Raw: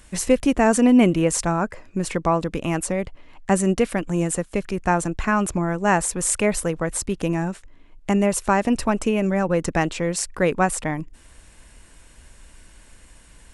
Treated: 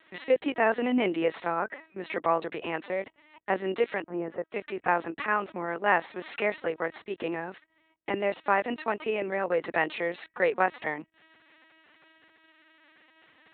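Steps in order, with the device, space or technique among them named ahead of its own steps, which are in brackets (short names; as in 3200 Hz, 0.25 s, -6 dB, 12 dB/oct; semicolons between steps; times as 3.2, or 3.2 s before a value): talking toy (LPC vocoder at 8 kHz pitch kept; HPF 370 Hz 12 dB/oct; bell 1900 Hz +5 dB 0.33 oct); 4.02–4.51 LPF 1200 Hz 12 dB/oct; gain -3.5 dB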